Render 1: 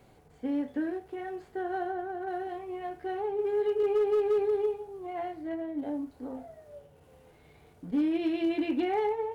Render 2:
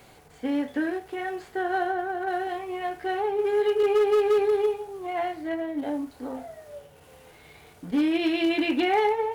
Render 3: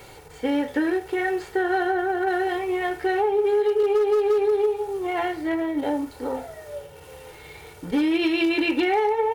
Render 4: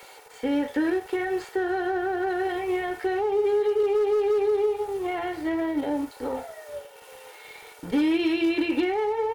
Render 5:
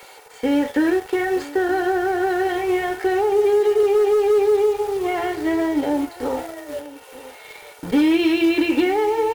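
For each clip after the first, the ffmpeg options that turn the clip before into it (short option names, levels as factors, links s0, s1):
-af "tiltshelf=f=840:g=-5.5,volume=2.51"
-af "aecho=1:1:2.2:0.52,acompressor=threshold=0.0562:ratio=6,volume=2.11"
-filter_complex "[0:a]acrossover=split=440[s0][s1];[s0]aeval=exprs='sgn(val(0))*max(abs(val(0))-0.00596,0)':c=same[s2];[s1]alimiter=level_in=1.06:limit=0.0631:level=0:latency=1:release=53,volume=0.944[s3];[s2][s3]amix=inputs=2:normalize=0"
-filter_complex "[0:a]asplit=2[s0][s1];[s1]acrusher=bits=5:mix=0:aa=0.000001,volume=0.335[s2];[s0][s2]amix=inputs=2:normalize=0,aecho=1:1:924:0.126,volume=1.5"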